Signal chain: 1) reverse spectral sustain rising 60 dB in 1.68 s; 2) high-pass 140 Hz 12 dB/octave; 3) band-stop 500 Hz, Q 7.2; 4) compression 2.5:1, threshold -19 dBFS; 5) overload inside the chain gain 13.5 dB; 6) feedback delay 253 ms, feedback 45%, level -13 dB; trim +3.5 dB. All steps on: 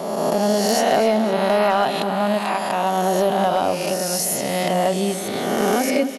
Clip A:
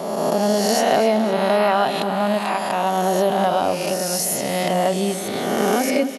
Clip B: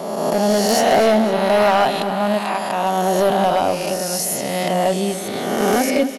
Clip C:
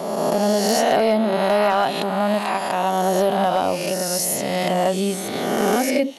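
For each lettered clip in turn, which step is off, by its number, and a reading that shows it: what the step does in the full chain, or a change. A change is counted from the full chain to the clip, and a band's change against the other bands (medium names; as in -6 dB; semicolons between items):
5, distortion -28 dB; 4, mean gain reduction 1.5 dB; 6, echo-to-direct -12.0 dB to none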